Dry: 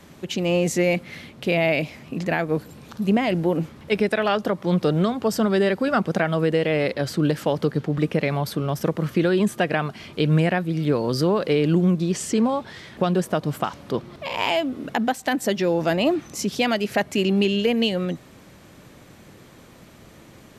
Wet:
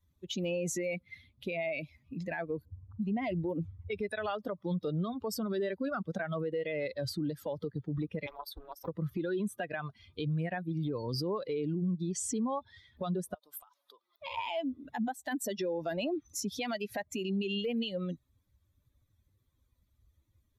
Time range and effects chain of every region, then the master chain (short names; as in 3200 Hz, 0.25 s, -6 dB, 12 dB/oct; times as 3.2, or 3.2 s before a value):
2.65–4.33 low-pass opened by the level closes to 1000 Hz, open at -18.5 dBFS + bell 96 Hz +14.5 dB 0.24 oct
8.26–8.88 steep high-pass 320 Hz + AM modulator 260 Hz, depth 85% + Doppler distortion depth 0.61 ms
13.34–14.22 HPF 570 Hz + high shelf 9200 Hz +7 dB + compressor 12:1, threshold -34 dBFS
whole clip: per-bin expansion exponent 2; compressor 2.5:1, threshold -31 dBFS; limiter -29 dBFS; gain +2.5 dB